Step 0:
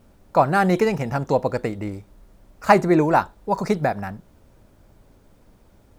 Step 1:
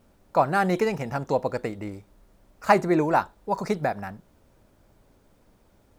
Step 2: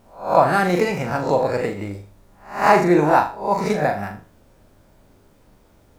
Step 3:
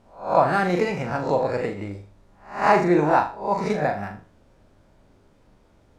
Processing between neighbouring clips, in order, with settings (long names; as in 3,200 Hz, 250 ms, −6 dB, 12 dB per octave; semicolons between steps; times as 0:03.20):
low-shelf EQ 200 Hz −4.5 dB; level −3.5 dB
peak hold with a rise ahead of every peak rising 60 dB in 0.42 s; flutter between parallel walls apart 6.8 metres, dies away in 0.36 s; boost into a limiter +4.5 dB; level −1 dB
high-frequency loss of the air 55 metres; level −3 dB